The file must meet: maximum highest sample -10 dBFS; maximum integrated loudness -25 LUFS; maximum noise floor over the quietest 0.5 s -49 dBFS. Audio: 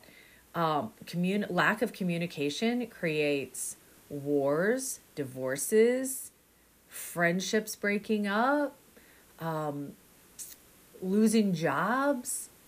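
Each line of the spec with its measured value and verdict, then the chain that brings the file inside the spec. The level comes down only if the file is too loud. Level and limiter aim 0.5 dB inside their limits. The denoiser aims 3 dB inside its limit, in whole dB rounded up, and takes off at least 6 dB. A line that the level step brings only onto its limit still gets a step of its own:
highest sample -13.0 dBFS: pass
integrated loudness -30.0 LUFS: pass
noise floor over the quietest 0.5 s -63 dBFS: pass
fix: none needed

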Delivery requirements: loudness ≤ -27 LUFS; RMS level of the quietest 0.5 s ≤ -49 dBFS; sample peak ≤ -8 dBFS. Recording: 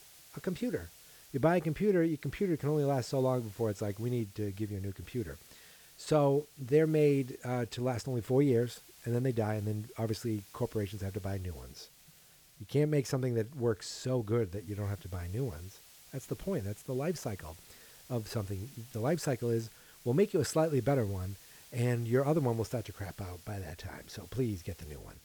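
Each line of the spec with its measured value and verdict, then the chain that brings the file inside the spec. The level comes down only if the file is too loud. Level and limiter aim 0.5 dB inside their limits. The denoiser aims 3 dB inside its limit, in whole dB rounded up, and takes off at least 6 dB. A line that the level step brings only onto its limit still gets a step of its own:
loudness -33.5 LUFS: pass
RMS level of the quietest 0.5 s -60 dBFS: pass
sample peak -16.0 dBFS: pass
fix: none needed

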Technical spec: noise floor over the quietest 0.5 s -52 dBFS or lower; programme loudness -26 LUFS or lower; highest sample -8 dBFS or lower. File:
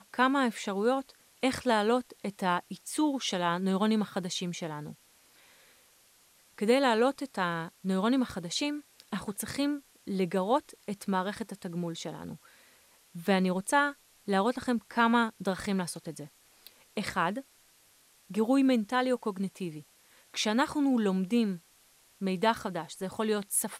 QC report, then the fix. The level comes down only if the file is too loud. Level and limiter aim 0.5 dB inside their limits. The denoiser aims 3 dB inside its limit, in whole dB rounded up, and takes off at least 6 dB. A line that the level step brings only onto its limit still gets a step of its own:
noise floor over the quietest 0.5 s -63 dBFS: pass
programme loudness -30.5 LUFS: pass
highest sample -11.5 dBFS: pass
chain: none needed

